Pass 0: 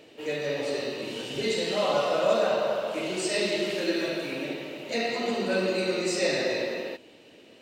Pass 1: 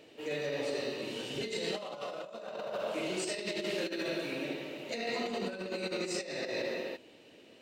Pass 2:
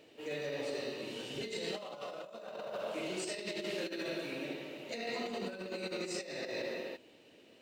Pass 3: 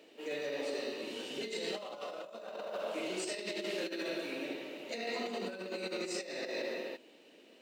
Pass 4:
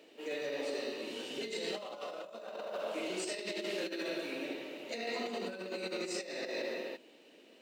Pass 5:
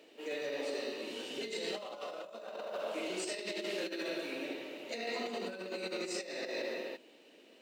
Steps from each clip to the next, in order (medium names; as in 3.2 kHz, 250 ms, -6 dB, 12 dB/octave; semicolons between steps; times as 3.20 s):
compressor with a negative ratio -29 dBFS, ratio -0.5; trim -6.5 dB
companded quantiser 8-bit; trim -3.5 dB
high-pass 200 Hz 24 dB/octave; trim +1 dB
hum notches 50/100/150/200 Hz
bass shelf 100 Hz -7.5 dB